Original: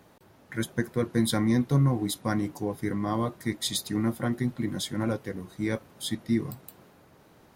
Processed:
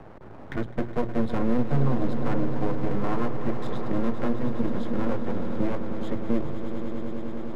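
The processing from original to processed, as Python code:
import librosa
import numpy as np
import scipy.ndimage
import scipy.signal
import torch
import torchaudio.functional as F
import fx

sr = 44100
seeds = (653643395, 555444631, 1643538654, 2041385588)

p1 = fx.recorder_agc(x, sr, target_db=-18.5, rise_db_per_s=7.9, max_gain_db=30)
p2 = scipy.signal.sosfilt(scipy.signal.butter(2, 1100.0, 'lowpass', fs=sr, output='sos'), p1)
p3 = fx.hum_notches(p2, sr, base_hz=60, count=3)
p4 = np.maximum(p3, 0.0)
p5 = p4 + fx.echo_swell(p4, sr, ms=103, loudest=5, wet_db=-13.5, dry=0)
p6 = fx.band_squash(p5, sr, depth_pct=40)
y = p6 * 10.0 ** (5.5 / 20.0)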